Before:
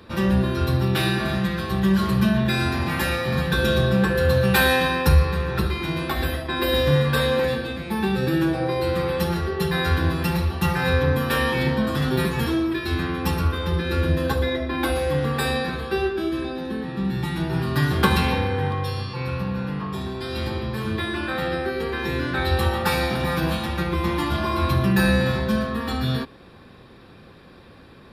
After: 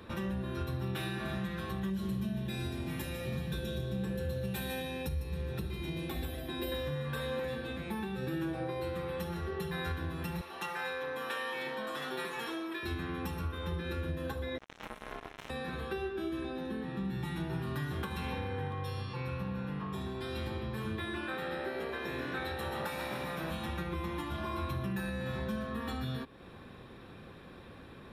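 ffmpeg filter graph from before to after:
-filter_complex "[0:a]asettb=1/sr,asplit=3[s0][s1][s2];[s0]atrim=end=1.904[s3];[s1]atrim=start=1.9:end=6.72,asetpts=PTS-STARTPTS,afade=t=in:d=0.004:c=qsin,afade=t=out:st=4.816:d=0.004:c=qsin,equalizer=f=1300:t=o:w=1.5:g=-11.5,aecho=1:1:150:0.376,atrim=end_sample=212562[s4];[s2]atrim=start=6.716[s5];[s3][s4]acrossfade=d=0.004:c1=hsin:c2=qsin[s6];[s6][s5]acrossfade=d=0.004:c1=qsin:c2=hsin,asettb=1/sr,asplit=3[s7][s8][s9];[s7]atrim=end=10.414[s10];[s8]atrim=start=10.41:end=12.83,asetpts=PTS-STARTPTS,afade=t=in:d=0.004:c=qsin,afade=t=out:st=2.416:d=0.004:c=qsin,highpass=500,acrossover=split=9900[s11][s12];[s12]acompressor=threshold=0.00282:ratio=4:attack=1:release=60[s13];[s11][s13]amix=inputs=2:normalize=0[s14];[s9]atrim=start=12.826[s15];[s10][s14]acrossfade=d=0.004:c1=hsin:c2=qsin[s16];[s16][s15]acrossfade=d=0.004:c1=qsin:c2=hsin,asettb=1/sr,asplit=3[s17][s18][s19];[s17]atrim=end=14.584[s20];[s18]atrim=start=14.58:end=15.5,asetpts=PTS-STARTPTS,afade=t=in:d=0.004:c=qsin,afade=t=out:st=0.916:d=0.004:c=qsin,acrossover=split=2900[s21][s22];[s22]acompressor=threshold=0.00794:ratio=4:attack=1:release=60[s23];[s21][s23]amix=inputs=2:normalize=0,acrusher=bits=2:mix=0:aa=0.5,aeval=exprs='val(0)*sin(2*PI*550*n/s)':c=same[s24];[s19]atrim=start=15.496[s25];[s20][s24]acrossfade=d=0.004:c1=hsin:c2=qsin[s26];[s26][s25]acrossfade=d=0.004:c1=qsin:c2=hsin,asettb=1/sr,asplit=3[s27][s28][s29];[s27]atrim=end=21.204[s30];[s28]atrim=start=21.2:end=23.51,asetpts=PTS-STARTPTS,afade=t=in:d=0.004:c=qsin,afade=t=out:st=2.306:d=0.004:c=qsin,highpass=f=180:p=1,asplit=9[s31][s32][s33][s34][s35][s36][s37][s38][s39];[s32]adelay=132,afreqshift=65,volume=0.422[s40];[s33]adelay=264,afreqshift=130,volume=0.26[s41];[s34]adelay=396,afreqshift=195,volume=0.162[s42];[s35]adelay=528,afreqshift=260,volume=0.1[s43];[s36]adelay=660,afreqshift=325,volume=0.0624[s44];[s37]adelay=792,afreqshift=390,volume=0.0385[s45];[s38]adelay=924,afreqshift=455,volume=0.024[s46];[s39]adelay=1056,afreqshift=520,volume=0.0148[s47];[s31][s40][s41][s42][s43][s44][s45][s46][s47]amix=inputs=9:normalize=0,atrim=end_sample=101871[s48];[s29]atrim=start=23.506[s49];[s30][s48]acrossfade=d=0.004:c1=hsin:c2=qsin[s50];[s50][s49]acrossfade=d=0.004:c1=qsin:c2=hsin,acompressor=threshold=0.0158:ratio=2,alimiter=limit=0.0708:level=0:latency=1:release=341,equalizer=f=4700:w=7.2:g=-12.5,volume=0.668"

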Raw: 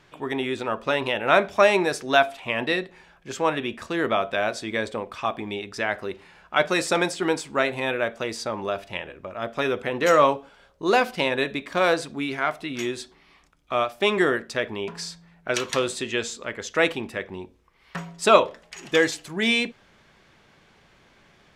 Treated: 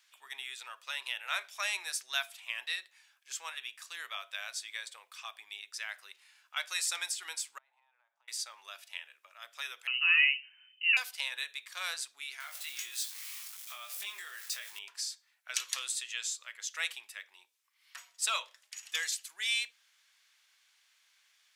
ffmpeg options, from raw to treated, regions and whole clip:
-filter_complex "[0:a]asettb=1/sr,asplit=3[s0][s1][s2];[s0]atrim=end=7.584[s3];[s1]atrim=start=7.58:end=8.28,asetpts=PTS-STARTPTS,afade=t=in:d=0.004:c=qsin,afade=t=out:st=0.696:d=0.004:c=qsin,bandpass=f=870:t=q:w=7.9,acompressor=threshold=0.00447:ratio=12:attack=3.2:release=140:knee=1:detection=peak[s4];[s2]atrim=start=8.276[s5];[s3][s4]acrossfade=d=0.004:c1=hsin:c2=qsin[s6];[s6][s5]acrossfade=d=0.004:c1=qsin:c2=hsin,asettb=1/sr,asplit=3[s7][s8][s9];[s7]atrim=end=9.874[s10];[s8]atrim=start=9.87:end=10.97,asetpts=PTS-STARTPTS,afade=t=in:d=0.004:c=qsin,afade=t=out:st=1.096:d=0.004:c=qsin,lowshelf=f=230:g=11.5,lowpass=f=2600:t=q:w=0.5098,lowpass=f=2600:t=q:w=0.6013,lowpass=f=2600:t=q:w=0.9,lowpass=f=2600:t=q:w=2.563,afreqshift=-3100[s11];[s9]atrim=start=10.966[s12];[s10][s11]acrossfade=d=0.004:c1=hsin:c2=qsin[s13];[s13][s12]acrossfade=d=0.004:c1=qsin:c2=hsin,asettb=1/sr,asplit=3[s14][s15][s16];[s14]atrim=end=12.404[s17];[s15]atrim=start=12.4:end=14.79,asetpts=PTS-STARTPTS,afade=t=in:d=0.004:c=qsin,afade=t=out:st=2.386:d=0.004:c=qsin,aeval=exprs='val(0)+0.5*0.0178*sgn(val(0))':c=same,acompressor=threshold=0.0562:ratio=6:attack=3.2:release=140:knee=1:detection=peak,asplit=2[s18][s19];[s19]adelay=20,volume=0.596[s20];[s18][s20]amix=inputs=2:normalize=0,atrim=end_sample=105399[s21];[s16]atrim=start=14.786[s22];[s17][s21]acrossfade=d=0.004:c1=hsin:c2=qsin[s23];[s23][s22]acrossfade=d=0.004:c1=qsin:c2=hsin,highpass=1100,aderivative"

